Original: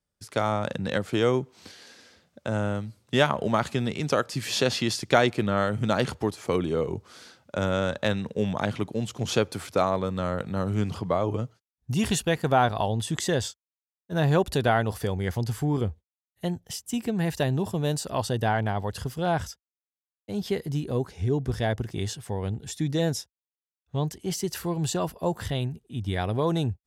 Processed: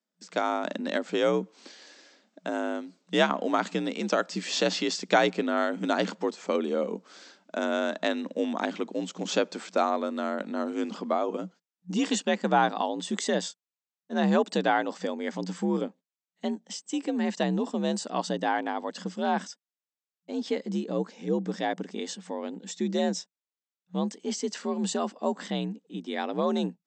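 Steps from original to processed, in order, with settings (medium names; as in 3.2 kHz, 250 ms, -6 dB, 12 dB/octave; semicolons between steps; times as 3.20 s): frequency shift +56 Hz; FFT band-pass 180–8200 Hz; trim -1.5 dB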